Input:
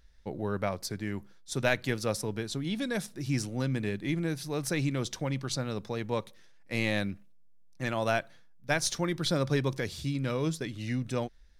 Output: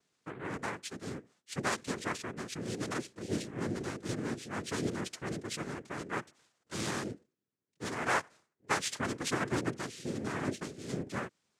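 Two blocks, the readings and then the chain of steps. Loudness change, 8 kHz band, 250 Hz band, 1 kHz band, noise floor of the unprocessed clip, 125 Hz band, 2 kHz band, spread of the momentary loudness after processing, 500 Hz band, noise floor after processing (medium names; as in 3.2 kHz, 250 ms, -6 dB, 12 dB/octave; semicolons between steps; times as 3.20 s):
-5.0 dB, -3.0 dB, -5.0 dB, 0.0 dB, -54 dBFS, -9.0 dB, -3.0 dB, 10 LU, -6.5 dB, -84 dBFS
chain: time-frequency box 8.05–9.53 s, 670–1500 Hz +7 dB; noise-vocoded speech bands 3; trim -5.5 dB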